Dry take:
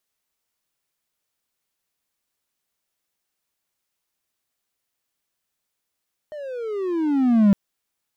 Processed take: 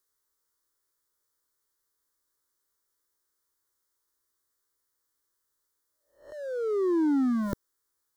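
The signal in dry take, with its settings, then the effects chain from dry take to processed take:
gliding synth tone triangle, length 1.21 s, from 618 Hz, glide -20 st, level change +21 dB, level -8.5 dB
spectral swells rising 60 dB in 0.42 s; fixed phaser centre 700 Hz, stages 6

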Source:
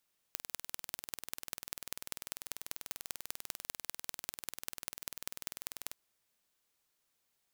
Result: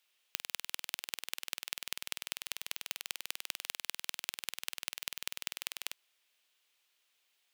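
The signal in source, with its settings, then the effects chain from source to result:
pulse train 20.3/s, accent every 4, -9 dBFS 5.61 s
HPF 380 Hz 12 dB/oct; bell 2900 Hz +11.5 dB 1.3 oct

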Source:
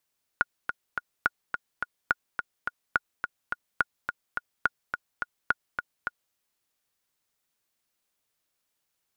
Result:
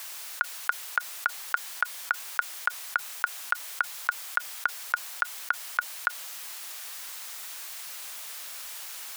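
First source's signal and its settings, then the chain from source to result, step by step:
metronome 212 bpm, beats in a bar 3, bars 7, 1440 Hz, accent 7 dB -8.5 dBFS
HPF 800 Hz 12 dB/oct; fast leveller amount 100%

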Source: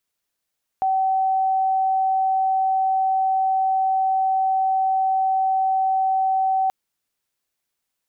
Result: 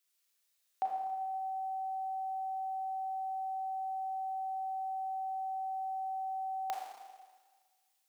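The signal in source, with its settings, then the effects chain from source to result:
tone sine 764 Hz -17 dBFS 5.88 s
HPF 530 Hz 12 dB/oct; bell 810 Hz -8.5 dB 2.5 oct; Schroeder reverb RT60 1.5 s, combs from 27 ms, DRR -1 dB

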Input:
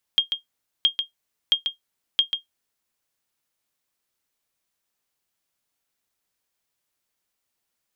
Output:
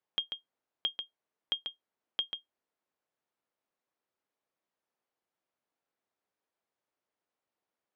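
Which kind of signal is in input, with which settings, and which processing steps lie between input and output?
sonar ping 3230 Hz, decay 0.13 s, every 0.67 s, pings 4, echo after 0.14 s, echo -7 dB -9 dBFS
band-pass 530 Hz, Q 0.63

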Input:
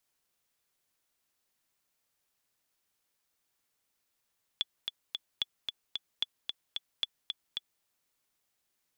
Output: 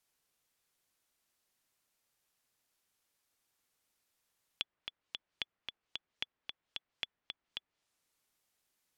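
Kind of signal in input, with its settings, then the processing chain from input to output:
metronome 223 bpm, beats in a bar 3, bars 4, 3430 Hz, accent 5 dB -16 dBFS
treble ducked by the level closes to 2100 Hz, closed at -42 dBFS

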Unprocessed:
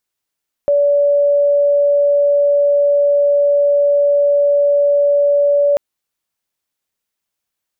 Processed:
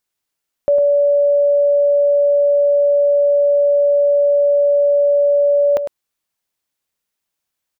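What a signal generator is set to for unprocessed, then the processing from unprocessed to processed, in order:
tone sine 574 Hz -9.5 dBFS 5.09 s
echo 0.104 s -9 dB

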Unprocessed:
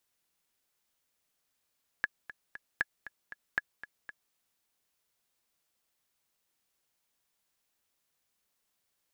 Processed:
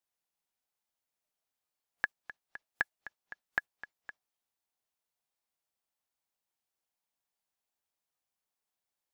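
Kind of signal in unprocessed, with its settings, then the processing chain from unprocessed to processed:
metronome 234 bpm, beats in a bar 3, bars 3, 1690 Hz, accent 15.5 dB -14.5 dBFS
spectral noise reduction 11 dB; bell 790 Hz +6.5 dB 0.77 oct

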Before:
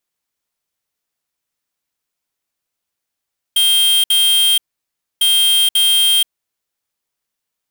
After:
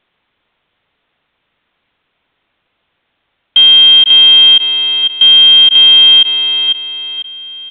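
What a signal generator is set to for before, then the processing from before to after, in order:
beep pattern square 3190 Hz, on 0.48 s, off 0.06 s, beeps 2, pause 0.63 s, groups 2, -12.5 dBFS
feedback echo 0.497 s, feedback 36%, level -17 dB; downsampling 8000 Hz; maximiser +21 dB

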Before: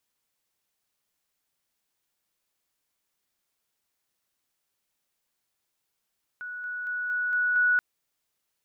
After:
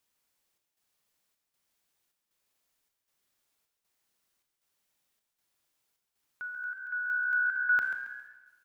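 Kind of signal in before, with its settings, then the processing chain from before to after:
level ladder 1470 Hz -34 dBFS, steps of 3 dB, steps 6, 0.23 s 0.00 s
chopper 1.3 Hz, depth 65%, duty 75%; on a send: frequency-shifting echo 0.136 s, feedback 33%, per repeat +65 Hz, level -10.5 dB; on the sum: Schroeder reverb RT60 1.3 s, combs from 27 ms, DRR 6 dB

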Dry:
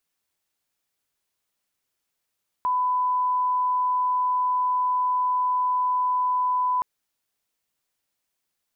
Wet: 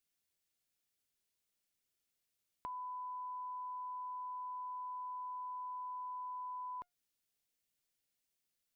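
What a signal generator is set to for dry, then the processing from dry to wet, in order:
line-up tone -20 dBFS 4.17 s
bell 1000 Hz -8 dB 1.5 oct; compressor, threshold -37 dBFS; resonator 710 Hz, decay 0.21 s, harmonics all, mix 50%

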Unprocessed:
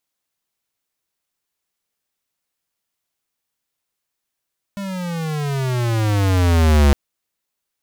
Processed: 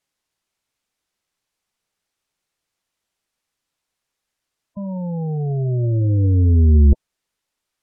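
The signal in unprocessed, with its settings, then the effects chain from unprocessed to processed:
gliding synth tone square, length 2.16 s, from 202 Hz, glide -18.5 st, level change +16 dB, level -11 dB
spectral gate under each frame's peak -15 dB strong; low shelf 62 Hz +6.5 dB; decimation joined by straight lines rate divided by 2×

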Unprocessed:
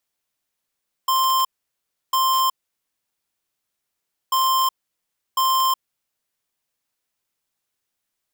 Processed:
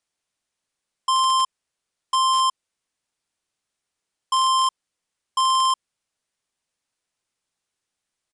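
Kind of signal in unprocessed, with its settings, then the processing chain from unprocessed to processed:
beep pattern square 1050 Hz, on 0.37 s, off 0.68 s, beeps 2, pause 1.82 s, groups 2, -18.5 dBFS
downsampling 22050 Hz

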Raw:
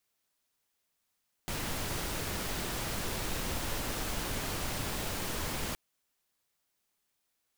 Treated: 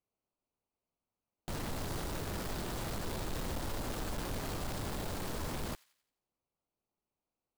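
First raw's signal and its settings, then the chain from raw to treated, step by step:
noise pink, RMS -35 dBFS 4.27 s
Wiener smoothing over 25 samples; thin delay 88 ms, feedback 45%, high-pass 1900 Hz, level -20 dB; hard clip -32 dBFS

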